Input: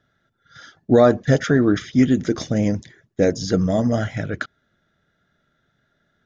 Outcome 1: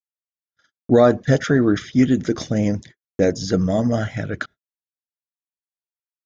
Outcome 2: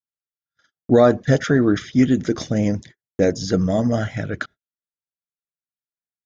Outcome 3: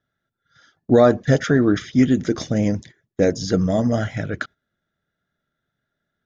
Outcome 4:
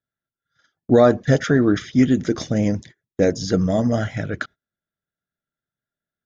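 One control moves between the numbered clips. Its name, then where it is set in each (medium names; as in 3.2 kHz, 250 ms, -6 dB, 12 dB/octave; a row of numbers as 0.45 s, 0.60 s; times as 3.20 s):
gate, range: -55 dB, -43 dB, -11 dB, -24 dB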